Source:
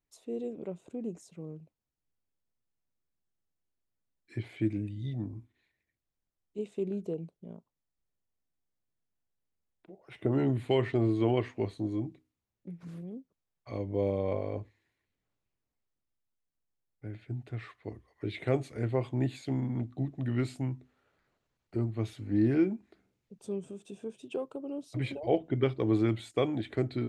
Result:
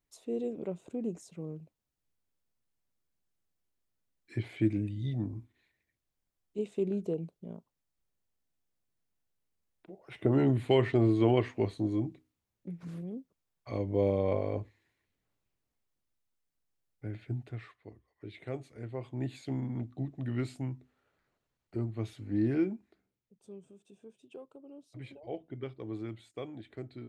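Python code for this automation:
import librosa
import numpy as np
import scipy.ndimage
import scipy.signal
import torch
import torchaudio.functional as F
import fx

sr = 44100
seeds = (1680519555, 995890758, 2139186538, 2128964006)

y = fx.gain(x, sr, db=fx.line((17.31, 2.0), (17.93, -10.0), (18.92, -10.0), (19.39, -3.0), (22.69, -3.0), (23.34, -12.5)))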